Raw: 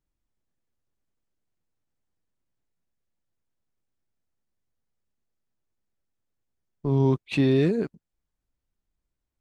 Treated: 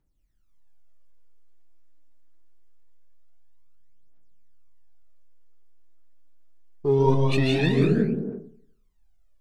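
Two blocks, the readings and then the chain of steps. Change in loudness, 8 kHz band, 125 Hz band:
+1.5 dB, no reading, +2.5 dB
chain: algorithmic reverb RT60 0.87 s, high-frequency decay 0.5×, pre-delay 110 ms, DRR -2 dB; phaser 0.24 Hz, delay 3.5 ms, feedback 71%

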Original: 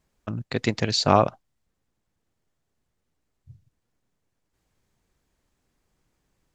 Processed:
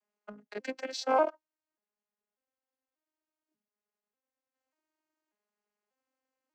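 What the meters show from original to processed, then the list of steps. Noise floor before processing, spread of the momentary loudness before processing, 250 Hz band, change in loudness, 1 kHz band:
-78 dBFS, 15 LU, -14.0 dB, -8.0 dB, -7.5 dB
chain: vocoder on a broken chord major triad, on G#3, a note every 590 ms; high-pass 580 Hz 12 dB/octave; band-stop 3.6 kHz, Q 7.6; in parallel at -10 dB: crossover distortion -43.5 dBFS; on the sum: trim -5.5 dB

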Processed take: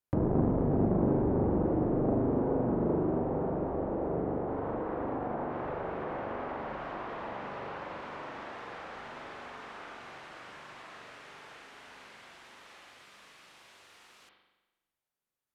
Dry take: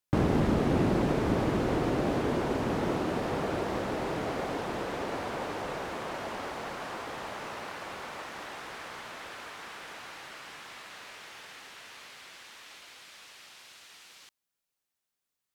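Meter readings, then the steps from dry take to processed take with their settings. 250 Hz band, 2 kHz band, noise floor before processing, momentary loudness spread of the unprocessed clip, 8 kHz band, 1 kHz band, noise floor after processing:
+0.5 dB, -7.0 dB, under -85 dBFS, 21 LU, under -10 dB, -2.5 dB, under -85 dBFS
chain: treble shelf 8.1 kHz +9.5 dB; spring tank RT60 1.1 s, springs 41 ms, chirp 35 ms, DRR 0.5 dB; low-pass that closes with the level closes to 820 Hz, closed at -26 dBFS; treble shelf 2.2 kHz -11.5 dB; transformer saturation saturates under 330 Hz; trim -1.5 dB

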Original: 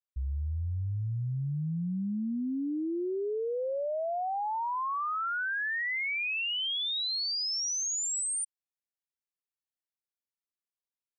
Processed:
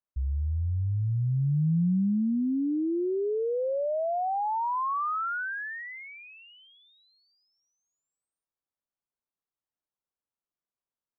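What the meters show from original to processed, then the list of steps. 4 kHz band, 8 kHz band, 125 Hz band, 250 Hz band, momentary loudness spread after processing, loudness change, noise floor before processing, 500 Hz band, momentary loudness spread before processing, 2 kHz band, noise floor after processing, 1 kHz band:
under -25 dB, under -40 dB, +6.0 dB, +6.0 dB, 10 LU, +2.5 dB, under -85 dBFS, +4.0 dB, 5 LU, -4.5 dB, under -85 dBFS, +3.0 dB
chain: low-pass 1.4 kHz 24 dB/octave; dynamic bell 170 Hz, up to +7 dB, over -47 dBFS, Q 1.5; in parallel at -1 dB: peak limiter -30 dBFS, peak gain reduction 8 dB; on the sum: trim -1.5 dB

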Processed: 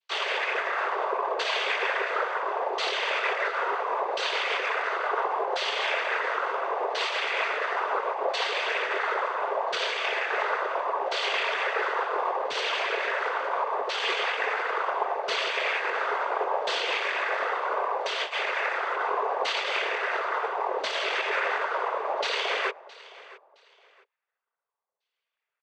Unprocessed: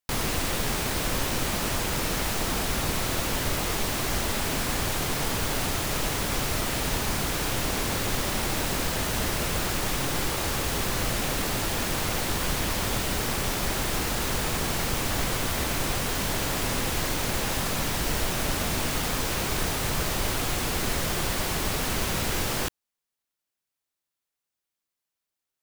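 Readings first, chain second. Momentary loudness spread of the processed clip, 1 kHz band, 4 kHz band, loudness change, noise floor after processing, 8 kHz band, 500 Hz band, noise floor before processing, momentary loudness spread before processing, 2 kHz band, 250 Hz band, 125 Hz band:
2 LU, +5.5 dB, -1.5 dB, -0.5 dB, under -85 dBFS, -18.5 dB, +3.0 dB, under -85 dBFS, 0 LU, +4.0 dB, -17.0 dB, under -40 dB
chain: square wave that keeps the level; comb 2.1 ms, depth 45%; peak limiter -17.5 dBFS, peak gain reduction 33.5 dB; chorus 0.13 Hz, delay 20 ms, depth 5.5 ms; Chebyshev high-pass 460 Hz, order 8; LFO low-pass saw down 0.72 Hz 740–3800 Hz; noise-vocoded speech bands 16; on a send: feedback delay 666 ms, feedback 27%, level -19.5 dB; on the sum: trim +2.5 dB

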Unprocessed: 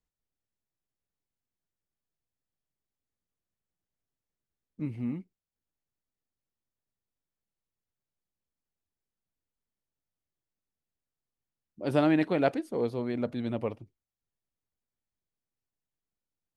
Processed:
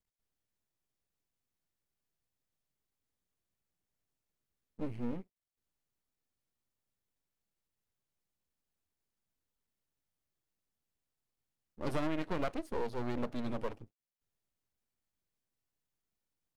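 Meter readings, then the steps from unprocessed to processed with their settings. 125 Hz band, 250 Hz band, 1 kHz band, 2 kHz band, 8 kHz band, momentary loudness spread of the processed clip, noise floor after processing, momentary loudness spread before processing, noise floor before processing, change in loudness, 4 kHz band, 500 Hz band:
-7.5 dB, -9.0 dB, -5.5 dB, -7.5 dB, no reading, 8 LU, under -85 dBFS, 13 LU, under -85 dBFS, -8.5 dB, -5.5 dB, -9.0 dB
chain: half-wave rectifier; compression 6:1, threshold -31 dBFS, peak gain reduction 9.5 dB; trim +2 dB

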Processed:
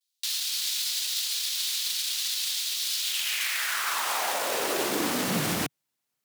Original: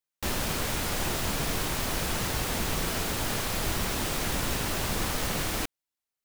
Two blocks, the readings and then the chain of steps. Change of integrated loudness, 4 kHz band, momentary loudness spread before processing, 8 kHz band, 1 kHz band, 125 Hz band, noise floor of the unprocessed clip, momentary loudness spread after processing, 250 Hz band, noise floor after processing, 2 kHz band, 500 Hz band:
+2.5 dB, +6.0 dB, 1 LU, +3.5 dB, +0.5 dB, -8.5 dB, under -85 dBFS, 1 LU, -1.0 dB, -82 dBFS, +1.5 dB, 0.0 dB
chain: high-pass 57 Hz; peak limiter -26.5 dBFS, peak gain reduction 9 dB; high-pass sweep 3.9 kHz -> 140 Hz, 2.96–5.61 s; vibrato 0.35 Hz 33 cents; trim +7.5 dB

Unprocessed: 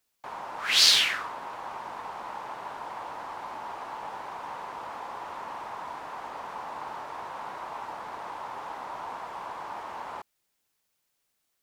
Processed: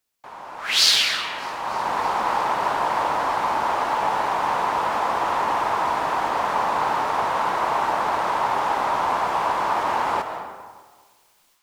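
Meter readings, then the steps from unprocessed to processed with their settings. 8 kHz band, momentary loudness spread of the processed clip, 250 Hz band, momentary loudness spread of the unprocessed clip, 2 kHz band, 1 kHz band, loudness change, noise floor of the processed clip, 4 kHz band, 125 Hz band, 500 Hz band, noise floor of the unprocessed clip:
+3.0 dB, 4 LU, +15.0 dB, 14 LU, +8.0 dB, +15.0 dB, +8.5 dB, -60 dBFS, +3.0 dB, +14.5 dB, +15.5 dB, -78 dBFS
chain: algorithmic reverb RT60 1.5 s, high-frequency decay 0.55×, pre-delay 110 ms, DRR 7 dB; level rider gain up to 16 dB; feedback echo behind a high-pass 304 ms, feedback 84%, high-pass 5.1 kHz, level -23 dB; trim -1 dB

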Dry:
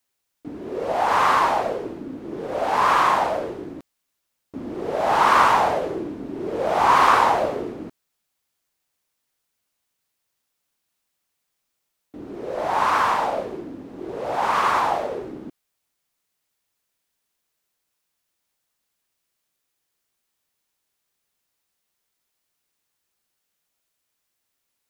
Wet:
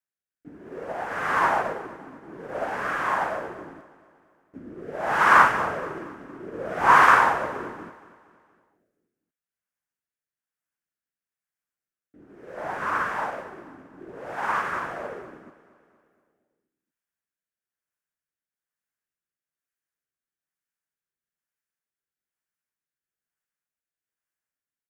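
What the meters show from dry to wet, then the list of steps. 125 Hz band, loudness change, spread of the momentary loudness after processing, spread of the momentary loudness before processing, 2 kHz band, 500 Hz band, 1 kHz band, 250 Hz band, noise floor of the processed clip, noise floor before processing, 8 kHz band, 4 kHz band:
-3.5 dB, -2.0 dB, 24 LU, 20 LU, +2.5 dB, -7.0 dB, -4.0 dB, -6.5 dB, under -85 dBFS, -78 dBFS, -6.0 dB, -8.0 dB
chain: fifteen-band graphic EQ 160 Hz +4 dB, 1.6 kHz +10 dB, 4 kHz -8 dB; rotary cabinet horn 1.1 Hz; feedback delay 235 ms, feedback 55%, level -12 dB; upward expansion 1.5:1, over -40 dBFS

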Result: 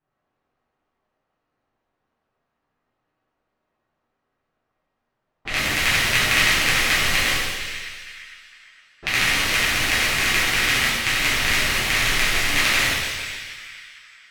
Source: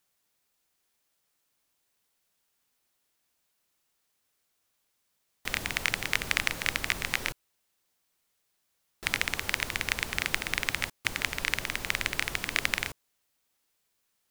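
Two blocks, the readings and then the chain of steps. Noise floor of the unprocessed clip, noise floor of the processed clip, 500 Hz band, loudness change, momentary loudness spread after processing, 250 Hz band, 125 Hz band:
-77 dBFS, -78 dBFS, +11.5 dB, +11.5 dB, 15 LU, +11.5 dB, +11.5 dB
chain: two-band feedback delay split 1.5 kHz, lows 140 ms, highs 459 ms, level -11 dB; level-controlled noise filter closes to 1.1 kHz, open at -32 dBFS; pitch-shifted reverb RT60 1.1 s, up +7 st, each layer -8 dB, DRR -10.5 dB

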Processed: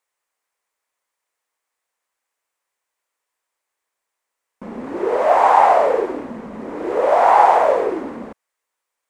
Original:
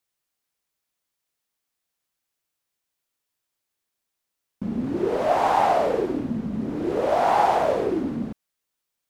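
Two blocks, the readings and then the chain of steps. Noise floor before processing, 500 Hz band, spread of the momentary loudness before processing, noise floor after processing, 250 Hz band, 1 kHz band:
-82 dBFS, +6.0 dB, 10 LU, -82 dBFS, -3.0 dB, +8.0 dB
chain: graphic EQ 125/500/1000/2000/8000 Hz -9/+10/+12/+10/+8 dB; trim -5.5 dB

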